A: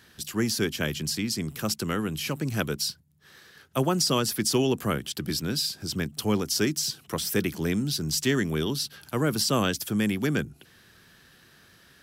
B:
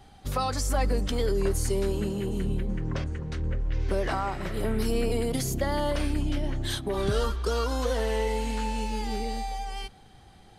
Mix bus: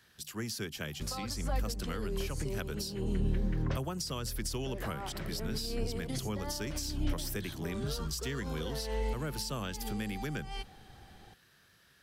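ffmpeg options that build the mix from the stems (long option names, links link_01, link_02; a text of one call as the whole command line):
ffmpeg -i stem1.wav -i stem2.wav -filter_complex "[0:a]equalizer=frequency=280:width_type=o:width=1.1:gain=-5,volume=-8dB,asplit=2[link_01][link_02];[1:a]highshelf=frequency=11000:gain=-12,adelay=750,volume=-1.5dB[link_03];[link_02]apad=whole_len=499969[link_04];[link_03][link_04]sidechaincompress=threshold=-46dB:ratio=5:attack=16:release=184[link_05];[link_01][link_05]amix=inputs=2:normalize=0,acrossover=split=180[link_06][link_07];[link_07]acompressor=threshold=-35dB:ratio=6[link_08];[link_06][link_08]amix=inputs=2:normalize=0" out.wav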